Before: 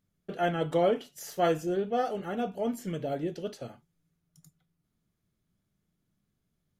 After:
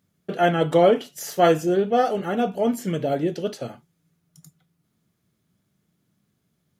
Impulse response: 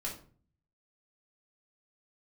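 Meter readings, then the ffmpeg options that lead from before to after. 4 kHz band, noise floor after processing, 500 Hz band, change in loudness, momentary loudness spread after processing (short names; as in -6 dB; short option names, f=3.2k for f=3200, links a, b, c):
+9.0 dB, -73 dBFS, +9.0 dB, +9.0 dB, 13 LU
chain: -af "highpass=96,volume=9dB"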